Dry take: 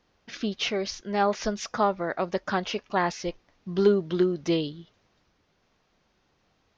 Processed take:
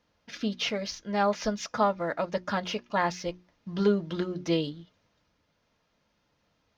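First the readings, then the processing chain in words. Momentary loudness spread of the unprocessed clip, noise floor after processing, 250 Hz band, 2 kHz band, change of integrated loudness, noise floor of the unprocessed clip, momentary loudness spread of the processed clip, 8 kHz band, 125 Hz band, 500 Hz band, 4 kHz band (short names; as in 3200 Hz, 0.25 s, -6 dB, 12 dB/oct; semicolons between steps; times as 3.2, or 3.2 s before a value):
12 LU, -74 dBFS, -2.0 dB, -1.5 dB, -2.5 dB, -70 dBFS, 11 LU, n/a, -1.0 dB, -3.5 dB, -1.5 dB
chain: notch comb 380 Hz; in parallel at -10.5 dB: crossover distortion -45.5 dBFS; on the sum: notches 60/120/180/240/300/360 Hz; gain -2 dB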